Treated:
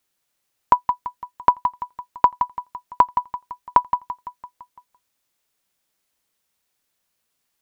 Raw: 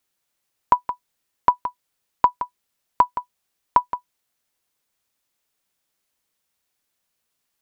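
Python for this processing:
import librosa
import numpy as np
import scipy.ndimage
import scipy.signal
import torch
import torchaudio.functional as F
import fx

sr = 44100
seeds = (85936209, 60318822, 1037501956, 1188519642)

y = fx.echo_feedback(x, sr, ms=169, feedback_pct=59, wet_db=-14)
y = F.gain(torch.from_numpy(y), 1.5).numpy()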